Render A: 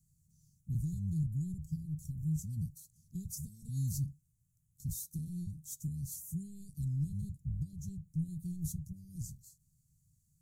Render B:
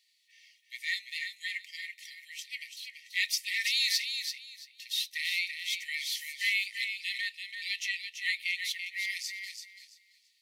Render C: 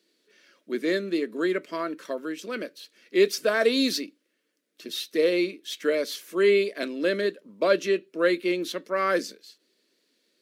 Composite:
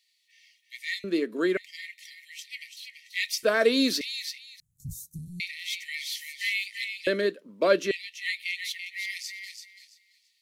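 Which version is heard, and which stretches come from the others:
B
1.04–1.57 from C
3.43–4.01 from C
4.6–5.4 from A
7.07–7.91 from C

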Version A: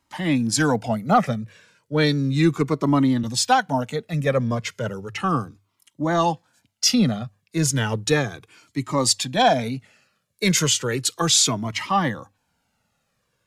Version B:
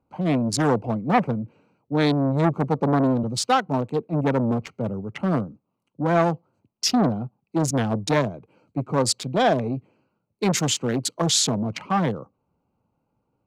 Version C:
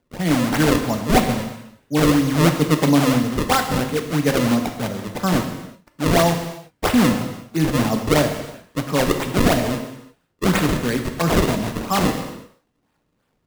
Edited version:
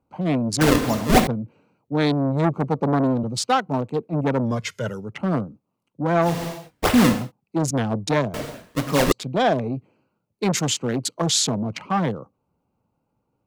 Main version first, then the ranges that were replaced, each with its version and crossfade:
B
0.61–1.27 from C
4.5–5.02 from A, crossfade 0.16 s
6.33–7.2 from C, crossfade 0.24 s
8.34–9.12 from C

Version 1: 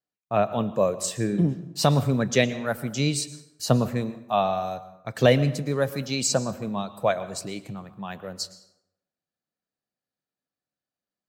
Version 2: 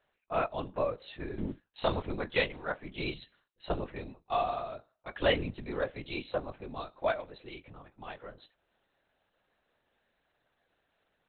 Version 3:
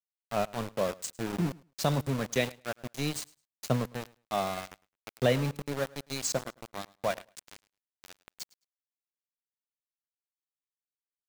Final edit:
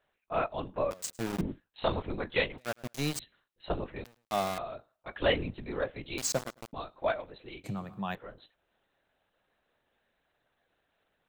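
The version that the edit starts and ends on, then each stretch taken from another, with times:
2
0.91–1.41 from 3
2.58–3.19 from 3
4.04–4.58 from 3
6.18–6.73 from 3
7.64–8.15 from 1

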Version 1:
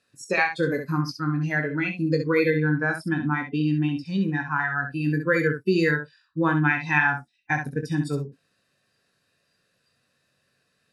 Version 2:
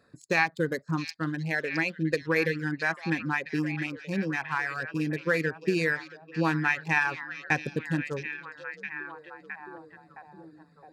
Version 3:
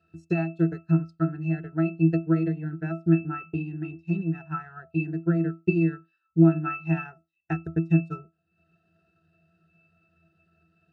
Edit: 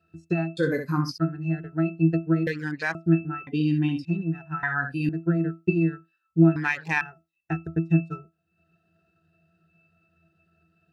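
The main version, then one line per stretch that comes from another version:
3
0.57–1.18 from 1
2.47–2.95 from 2
3.47–4.05 from 1
4.63–5.09 from 1
6.56–7.01 from 2

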